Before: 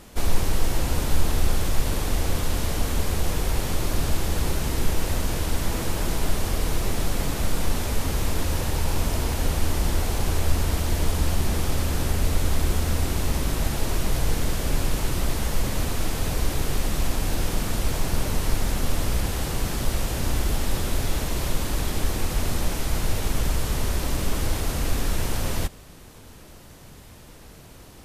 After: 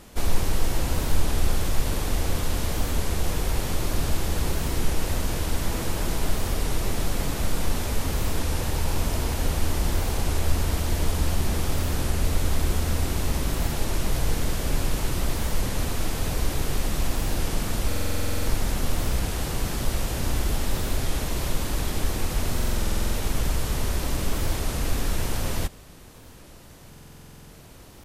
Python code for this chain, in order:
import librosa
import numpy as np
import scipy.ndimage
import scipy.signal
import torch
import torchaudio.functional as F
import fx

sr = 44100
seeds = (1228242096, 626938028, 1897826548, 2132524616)

y = fx.buffer_glitch(x, sr, at_s=(17.87, 22.55, 26.89), block=2048, repeats=12)
y = fx.record_warp(y, sr, rpm=33.33, depth_cents=100.0)
y = F.gain(torch.from_numpy(y), -1.0).numpy()